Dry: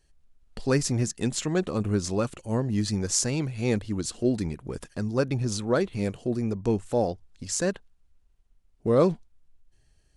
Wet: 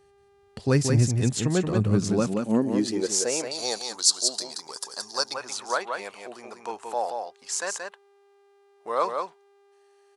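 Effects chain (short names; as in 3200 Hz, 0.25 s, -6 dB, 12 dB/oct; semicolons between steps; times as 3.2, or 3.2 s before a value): echo 0.178 s -5 dB; high-pass sweep 99 Hz -> 920 Hz, 1.7–3.93; 3.51–5.34 resonant high shelf 3400 Hz +11 dB, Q 3; buzz 400 Hz, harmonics 28, -60 dBFS -9 dB/oct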